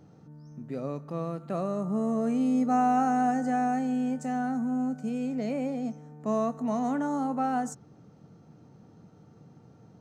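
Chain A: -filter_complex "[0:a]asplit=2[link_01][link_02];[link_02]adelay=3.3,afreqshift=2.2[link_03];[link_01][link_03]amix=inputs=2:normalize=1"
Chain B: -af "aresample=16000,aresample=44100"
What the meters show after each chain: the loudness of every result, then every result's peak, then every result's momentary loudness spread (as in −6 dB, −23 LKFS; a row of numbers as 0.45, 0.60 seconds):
−32.0, −29.0 LKFS; −18.5, −15.0 dBFS; 12, 11 LU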